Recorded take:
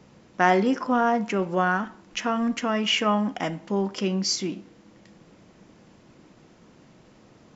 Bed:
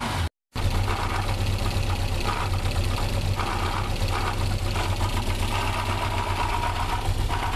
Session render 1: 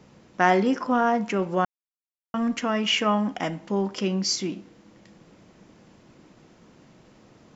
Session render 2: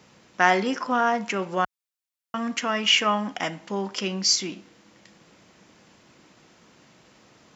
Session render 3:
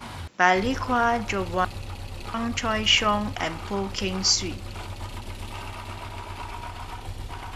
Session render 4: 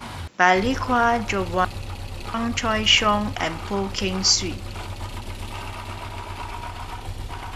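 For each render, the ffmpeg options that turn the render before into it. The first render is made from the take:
ffmpeg -i in.wav -filter_complex "[0:a]asplit=3[link_01][link_02][link_03];[link_01]atrim=end=1.65,asetpts=PTS-STARTPTS,afade=type=out:start_time=1.646:duration=0.004:curve=hsin[link_04];[link_02]atrim=start=1.65:end=2.34,asetpts=PTS-STARTPTS,volume=0[link_05];[link_03]atrim=start=2.34,asetpts=PTS-STARTPTS,afade=type=in:duration=0.004:curve=hsin[link_06];[link_04][link_05][link_06]concat=n=3:v=0:a=1" out.wav
ffmpeg -i in.wav -af "highpass=46,tiltshelf=frequency=810:gain=-5.5" out.wav
ffmpeg -i in.wav -i bed.wav -filter_complex "[1:a]volume=-10.5dB[link_01];[0:a][link_01]amix=inputs=2:normalize=0" out.wav
ffmpeg -i in.wav -af "volume=3dB,alimiter=limit=-3dB:level=0:latency=1" out.wav

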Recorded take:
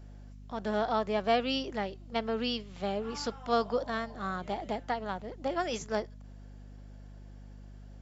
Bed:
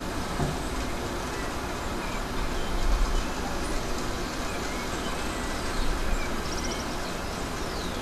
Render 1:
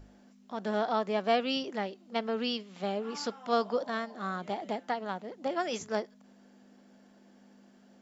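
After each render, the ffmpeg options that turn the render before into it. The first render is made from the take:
ffmpeg -i in.wav -af "bandreject=frequency=50:width_type=h:width=6,bandreject=frequency=100:width_type=h:width=6,bandreject=frequency=150:width_type=h:width=6" out.wav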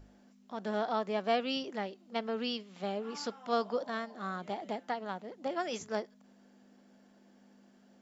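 ffmpeg -i in.wav -af "volume=-3dB" out.wav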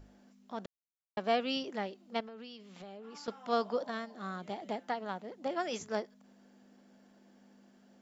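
ffmpeg -i in.wav -filter_complex "[0:a]asettb=1/sr,asplit=3[link_01][link_02][link_03];[link_01]atrim=end=2.204[link_04];[link_02]atrim=start=2.2:end=3.28,asetpts=PTS-STARTPTS,afade=type=in:duration=0.004:curve=qsin,afade=type=out:start_time=1.076:duration=0.004:curve=qsin,acompressor=threshold=-45dB:ratio=6:attack=3.2:release=140:knee=1:detection=peak[link_05];[link_03]atrim=start=3.276[link_06];[link_04][link_05]acrossfade=duration=0.004:curve1=hsin:curve2=qsin[link_07];[link_07][link_06]acrossfade=duration=0.004:curve1=qsin:curve2=hsin,asettb=1/sr,asplit=3[link_08][link_09][link_10];[link_08]atrim=end=3.914[link_11];[link_09]atrim=start=3.91:end=4.69,asetpts=PTS-STARTPTS,afade=type=in:duration=0.004:curve=qsin,afade=type=out:start_time=0.776:duration=0.004:curve=qsin,equalizer=frequency=990:width_type=o:width=2.6:gain=-3.5[link_12];[link_10]atrim=start=4.686[link_13];[link_11][link_12]acrossfade=duration=0.004:curve1=hsin:curve2=qsin[link_14];[link_14][link_13]acrossfade=duration=0.004:curve1=qsin:curve2=hsin,asplit=3[link_15][link_16][link_17];[link_15]atrim=end=0.66,asetpts=PTS-STARTPTS,afade=type=out:start_time=0.656:duration=0.004:curve=hsin[link_18];[link_16]atrim=start=0.66:end=1.17,asetpts=PTS-STARTPTS,volume=0[link_19];[link_17]atrim=start=1.17,asetpts=PTS-STARTPTS,afade=type=in:duration=0.004:curve=hsin[link_20];[link_18][link_19][link_20]concat=n=3:v=0:a=1" out.wav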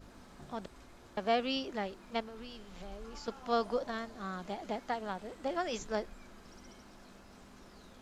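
ffmpeg -i in.wav -i bed.wav -filter_complex "[1:a]volume=-25dB[link_01];[0:a][link_01]amix=inputs=2:normalize=0" out.wav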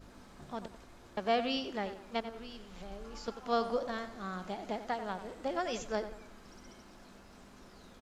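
ffmpeg -i in.wav -filter_complex "[0:a]asplit=2[link_01][link_02];[link_02]adelay=91,lowpass=frequency=3800:poles=1,volume=-11dB,asplit=2[link_03][link_04];[link_04]adelay=91,lowpass=frequency=3800:poles=1,volume=0.4,asplit=2[link_05][link_06];[link_06]adelay=91,lowpass=frequency=3800:poles=1,volume=0.4,asplit=2[link_07][link_08];[link_08]adelay=91,lowpass=frequency=3800:poles=1,volume=0.4[link_09];[link_01][link_03][link_05][link_07][link_09]amix=inputs=5:normalize=0" out.wav

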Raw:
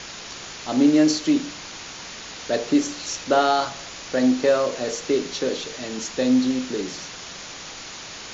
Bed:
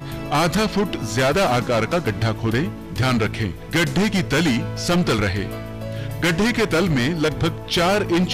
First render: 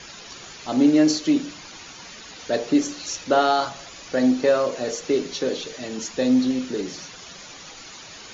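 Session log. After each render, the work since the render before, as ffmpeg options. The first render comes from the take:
ffmpeg -i in.wav -af "afftdn=noise_reduction=9:noise_floor=-38" out.wav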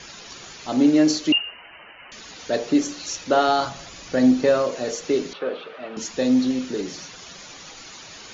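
ffmpeg -i in.wav -filter_complex "[0:a]asettb=1/sr,asplit=3[link_01][link_02][link_03];[link_01]atrim=end=1.324[link_04];[link_02]atrim=start=1.32:end=2.12,asetpts=PTS-STARTPTS,afade=type=in:duration=0.004:curve=qsin,afade=type=out:start_time=0.796:duration=0.004:curve=qsin,lowpass=frequency=2600:width_type=q:width=0.5098,lowpass=frequency=2600:width_type=q:width=0.6013,lowpass=frequency=2600:width_type=q:width=0.9,lowpass=frequency=2600:width_type=q:width=2.563,afreqshift=-3100[link_05];[link_03]atrim=start=2.116[link_06];[link_04][link_05]acrossfade=duration=0.004:curve1=hsin:curve2=qsin[link_07];[link_07][link_06]acrossfade=duration=0.004:curve1=qsin:curve2=hsin,asettb=1/sr,asplit=3[link_08][link_09][link_10];[link_08]atrim=end=3.474[link_11];[link_09]atrim=start=3.47:end=4.62,asetpts=PTS-STARTPTS,afade=type=in:duration=0.004:curve=qsin,afade=type=out:start_time=1.146:duration=0.004:curve=qsin,bass=frequency=250:gain=6,treble=frequency=4000:gain=0[link_12];[link_10]atrim=start=4.616[link_13];[link_11][link_12]acrossfade=duration=0.004:curve1=hsin:curve2=qsin[link_14];[link_14][link_13]acrossfade=duration=0.004:curve1=qsin:curve2=hsin,asettb=1/sr,asplit=3[link_15][link_16][link_17];[link_15]atrim=end=5.334[link_18];[link_16]atrim=start=5.33:end=5.97,asetpts=PTS-STARTPTS,afade=type=in:duration=0.004:curve=qsin,afade=type=out:start_time=0.636:duration=0.004:curve=qsin,highpass=280,equalizer=frequency=290:width_type=q:width=4:gain=-8,equalizer=frequency=410:width_type=q:width=4:gain=-3,equalizer=frequency=670:width_type=q:width=4:gain=4,equalizer=frequency=1300:width_type=q:width=4:gain=10,equalizer=frequency=1900:width_type=q:width=4:gain=-5,lowpass=frequency=2800:width=0.5412,lowpass=frequency=2800:width=1.3066[link_19];[link_17]atrim=start=5.966[link_20];[link_18][link_19]acrossfade=duration=0.004:curve1=hsin:curve2=qsin[link_21];[link_21][link_20]acrossfade=duration=0.004:curve1=qsin:curve2=hsin" out.wav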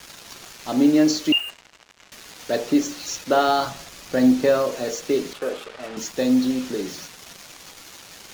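ffmpeg -i in.wav -af "acrusher=bits=5:mix=0:aa=0.5" out.wav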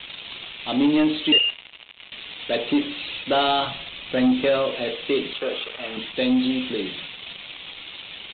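ffmpeg -i in.wav -af "aexciter=amount=5.8:drive=3:freq=2300,aresample=8000,asoftclip=type=tanh:threshold=-13dB,aresample=44100" out.wav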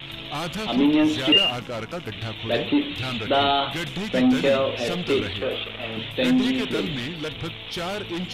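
ffmpeg -i in.wav -i bed.wav -filter_complex "[1:a]volume=-11.5dB[link_01];[0:a][link_01]amix=inputs=2:normalize=0" out.wav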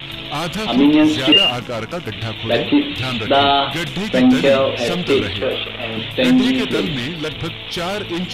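ffmpeg -i in.wav -af "volume=6.5dB,alimiter=limit=-3dB:level=0:latency=1" out.wav

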